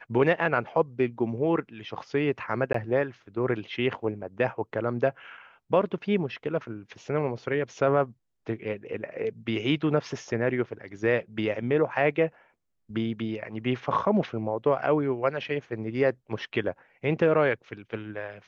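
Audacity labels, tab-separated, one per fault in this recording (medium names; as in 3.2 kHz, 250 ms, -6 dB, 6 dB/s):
2.730000	2.740000	dropout 14 ms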